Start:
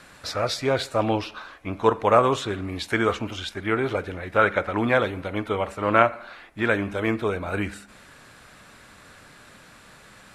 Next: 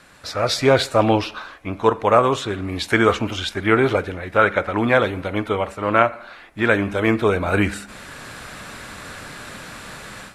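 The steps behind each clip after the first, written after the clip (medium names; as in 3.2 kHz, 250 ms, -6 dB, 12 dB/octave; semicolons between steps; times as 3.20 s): level rider gain up to 14 dB; trim -1 dB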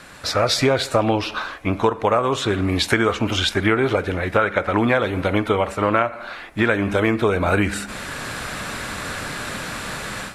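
compression 6:1, threshold -22 dBFS, peak gain reduction 12.5 dB; trim +7 dB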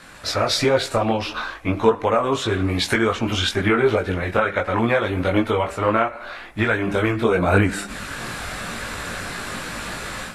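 chorus voices 6, 1.1 Hz, delay 20 ms, depth 3 ms; trim +2 dB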